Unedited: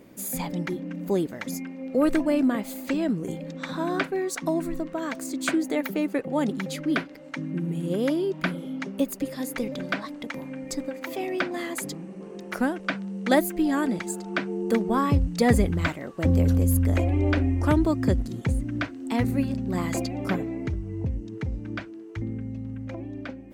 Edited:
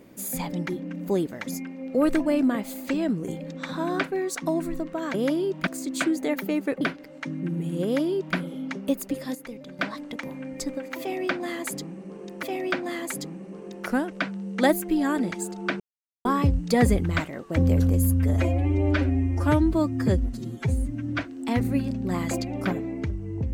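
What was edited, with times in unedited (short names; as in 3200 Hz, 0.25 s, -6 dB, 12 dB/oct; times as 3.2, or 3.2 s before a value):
6.28–6.92 cut
7.94–8.47 copy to 5.14
9.46–9.9 gain -9.5 dB
11.11–12.54 loop, 2 plays
14.48–14.93 mute
16.73–18.82 stretch 1.5×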